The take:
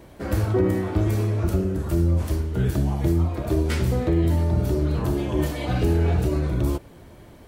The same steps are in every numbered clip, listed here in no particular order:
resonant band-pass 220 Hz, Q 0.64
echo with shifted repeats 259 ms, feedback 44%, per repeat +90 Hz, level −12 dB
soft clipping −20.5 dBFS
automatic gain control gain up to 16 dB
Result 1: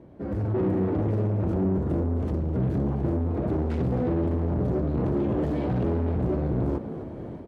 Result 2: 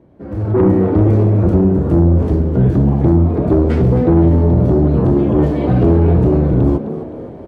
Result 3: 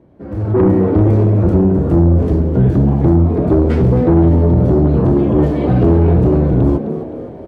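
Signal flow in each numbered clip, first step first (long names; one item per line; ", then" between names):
automatic gain control, then soft clipping, then resonant band-pass, then echo with shifted repeats
resonant band-pass, then soft clipping, then echo with shifted repeats, then automatic gain control
resonant band-pass, then echo with shifted repeats, then soft clipping, then automatic gain control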